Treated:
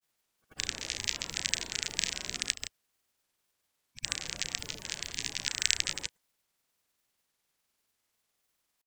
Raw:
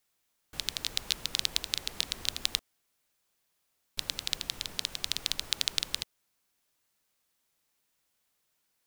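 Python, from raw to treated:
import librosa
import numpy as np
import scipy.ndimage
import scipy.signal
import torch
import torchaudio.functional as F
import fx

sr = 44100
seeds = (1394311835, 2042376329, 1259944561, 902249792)

y = fx.spec_quant(x, sr, step_db=30)
y = fx.room_early_taps(y, sr, ms=(33, 65), db=(-8.0, -9.5))
y = fx.granulator(y, sr, seeds[0], grain_ms=100.0, per_s=20.0, spray_ms=100.0, spread_st=0)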